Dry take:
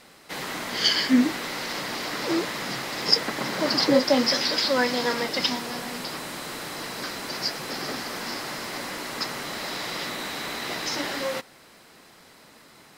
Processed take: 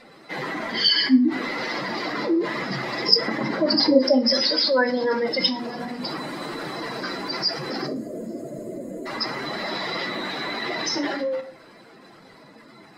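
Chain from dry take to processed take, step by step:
expanding power law on the bin magnitudes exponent 2.1
mains-hum notches 60/120/180/240 Hz
gain on a spectral selection 0:07.87–0:09.06, 710–6,400 Hz −26 dB
on a send: convolution reverb RT60 0.40 s, pre-delay 3 ms, DRR 7.5 dB
on the sum: level +3 dB

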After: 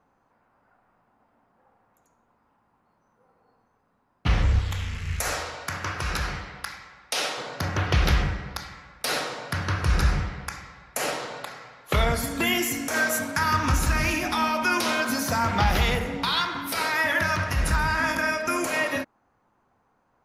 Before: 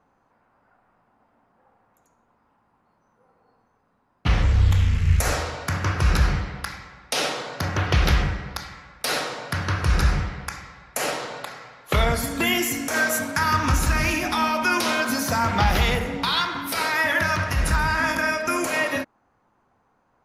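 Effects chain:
0:04.59–0:07.38: low-shelf EQ 360 Hz −10.5 dB
level −2 dB

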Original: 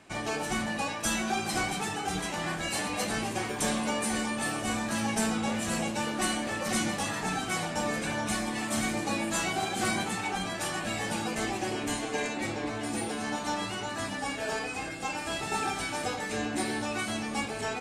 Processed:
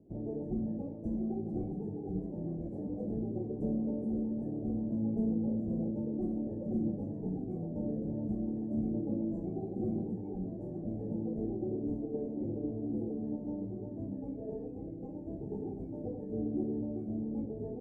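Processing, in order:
inverse Chebyshev low-pass filter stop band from 1,200 Hz, stop band 50 dB

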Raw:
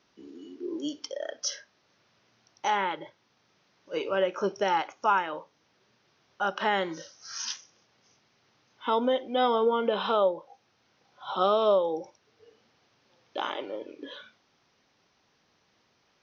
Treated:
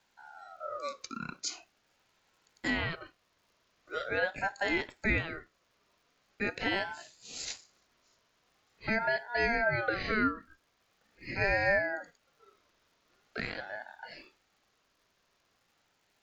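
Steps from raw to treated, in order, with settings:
surface crackle 250 per second −59 dBFS
ring modulator whose carrier an LFO sweeps 1,000 Hz, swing 20%, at 0.43 Hz
level −2 dB

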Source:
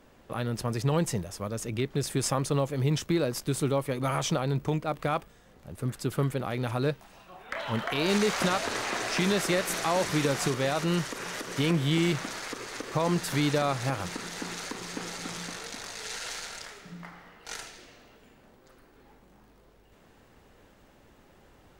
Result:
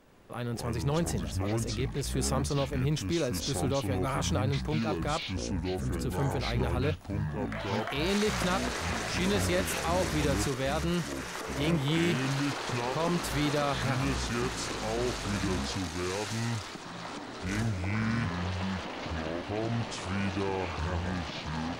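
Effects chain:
transient designer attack −4 dB, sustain 0 dB
delay with pitch and tempo change per echo 81 ms, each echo −7 semitones, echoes 2
level −2.5 dB

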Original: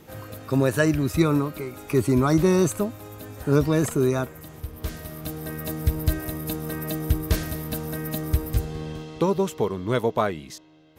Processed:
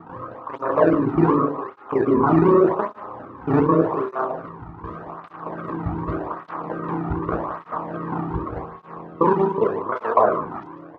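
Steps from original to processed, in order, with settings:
reversed piece by piece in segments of 31 ms
ambience of single reflections 18 ms −6 dB, 67 ms −7.5 dB
sample-and-hold swept by an LFO 12×, swing 160% 2.6 Hz
reversed playback
upward compression, threshold −27 dBFS
reversed playback
low-pass with resonance 1,100 Hz, resonance Q 5.2
on a send: single-tap delay 150 ms −11 dB
on the sum: dynamic equaliser 510 Hz, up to +4 dB, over −30 dBFS, Q 0.82
through-zero flanger with one copy inverted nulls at 0.85 Hz, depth 2 ms

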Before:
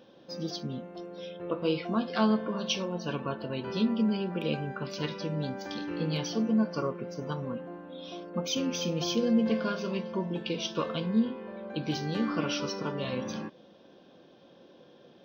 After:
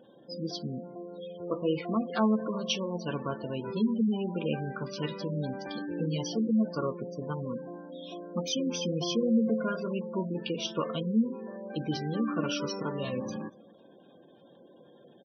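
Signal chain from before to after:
slap from a distant wall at 41 metres, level −23 dB
gate on every frequency bin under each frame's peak −20 dB strong

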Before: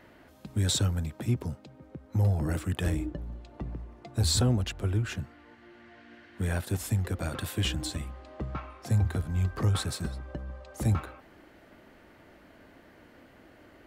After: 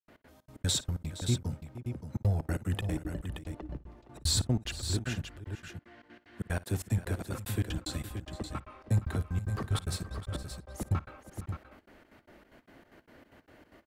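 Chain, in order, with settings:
gate pattern ".x.xx.x.xx" 187 BPM −60 dB
multi-tap delay 55/466/575 ms −20/−15.5/−8 dB
level −1.5 dB

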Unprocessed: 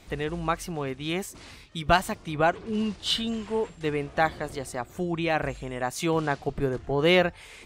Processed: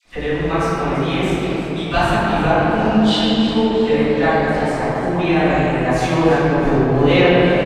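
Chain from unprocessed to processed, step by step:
in parallel at +3 dB: brickwall limiter −17.5 dBFS, peak gain reduction 10.5 dB
on the sum: dead-zone distortion −45.5 dBFS
high-frequency loss of the air 50 metres
all-pass dispersion lows, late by 48 ms, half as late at 1,000 Hz
on a send: echo with shifted repeats 335 ms, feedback 47%, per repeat +95 Hz, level −12 dB
on the sum: rectangular room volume 180 cubic metres, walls hard, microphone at 1.9 metres
level −8 dB

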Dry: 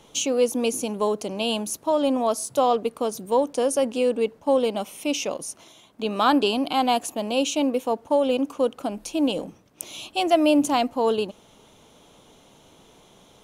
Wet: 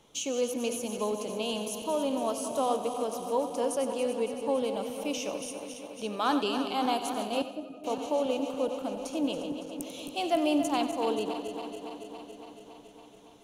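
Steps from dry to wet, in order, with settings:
feedback delay that plays each chunk backwards 140 ms, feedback 84%, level −10 dB
0:07.42–0:07.84: resonances in every octave D#, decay 0.11 s
echo with a time of its own for lows and highs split 380 Hz, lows 295 ms, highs 92 ms, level −13 dB
level −8.5 dB

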